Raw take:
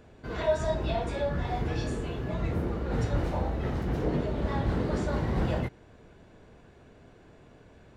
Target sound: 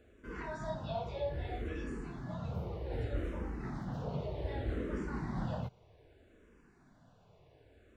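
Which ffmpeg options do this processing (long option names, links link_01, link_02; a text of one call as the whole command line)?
ffmpeg -i in.wav -filter_complex "[0:a]acrossover=split=4700[link_01][link_02];[link_02]acompressor=threshold=-60dB:ratio=4:attack=1:release=60[link_03];[link_01][link_03]amix=inputs=2:normalize=0,asplit=2[link_04][link_05];[link_05]afreqshift=-0.64[link_06];[link_04][link_06]amix=inputs=2:normalize=1,volume=-6dB" out.wav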